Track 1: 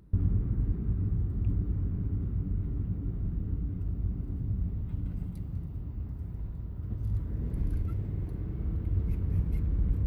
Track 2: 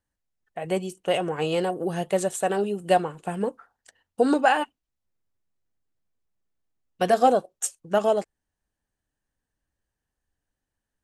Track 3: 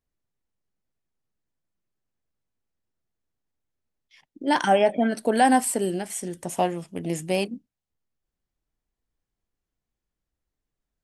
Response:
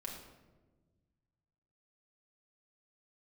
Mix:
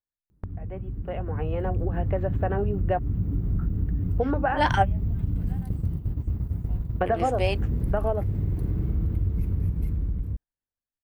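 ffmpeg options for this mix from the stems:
-filter_complex "[0:a]lowshelf=f=460:g=4.5,adelay=300,volume=-2.5dB[a];[1:a]lowpass=f=2k:w=0.5412,lowpass=f=2k:w=1.3066,bandreject=f=60:t=h:w=6,bandreject=f=120:t=h:w=6,bandreject=f=180:t=h:w=6,bandreject=f=240:t=h:w=6,bandreject=f=300:t=h:w=6,volume=-5.5dB,asplit=3[b][c][d];[b]atrim=end=2.99,asetpts=PTS-STARTPTS,afade=t=out:st=2.986:d=0.004:c=hsin[e];[c]atrim=start=2.99:end=3.53,asetpts=PTS-STARTPTS,volume=0[f];[d]atrim=start=3.53,asetpts=PTS-STARTPTS,afade=t=in:d=0.004:c=hsin[g];[e][f][g]concat=n=3:v=0:a=1,asplit=2[h][i];[2:a]highpass=390,lowpass=3.3k,adelay=100,volume=-11dB[j];[i]apad=whole_len=490904[k];[j][k]sidechaingate=range=-33dB:threshold=-53dB:ratio=16:detection=peak[l];[a][h]amix=inputs=2:normalize=0,agate=range=-11dB:threshold=-34dB:ratio=16:detection=peak,acompressor=threshold=-33dB:ratio=5,volume=0dB[m];[l][m]amix=inputs=2:normalize=0,highshelf=f=8.1k:g=11,dynaudnorm=f=210:g=13:m=11dB"

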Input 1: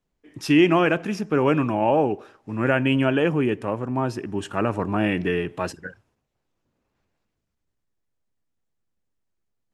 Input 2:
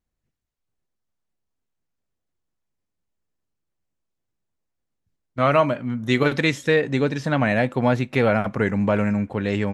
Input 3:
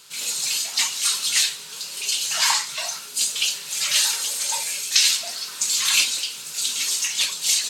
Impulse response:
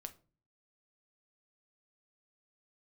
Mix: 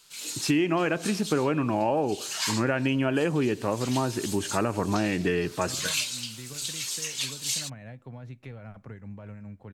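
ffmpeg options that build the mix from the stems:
-filter_complex "[0:a]volume=1dB,asplit=2[a][b];[1:a]tremolo=f=5:d=0.39,acrossover=split=120[c][d];[d]acompressor=threshold=-34dB:ratio=10[e];[c][e]amix=inputs=2:normalize=0,adelay=300,volume=-11.5dB,asplit=2[f][g];[g]volume=-9.5dB[h];[2:a]volume=-9dB[i];[b]apad=whole_len=339470[j];[i][j]sidechaincompress=threshold=-30dB:ratio=8:attack=41:release=176[k];[3:a]atrim=start_sample=2205[l];[h][l]afir=irnorm=-1:irlink=0[m];[a][f][k][m]amix=inputs=4:normalize=0,acompressor=threshold=-21dB:ratio=6"

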